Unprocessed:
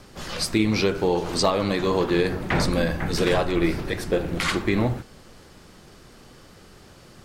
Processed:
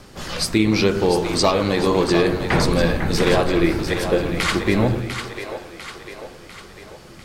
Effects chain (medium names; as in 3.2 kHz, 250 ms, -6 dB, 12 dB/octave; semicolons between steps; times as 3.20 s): two-band feedback delay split 410 Hz, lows 126 ms, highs 698 ms, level -8 dB; trim +3.5 dB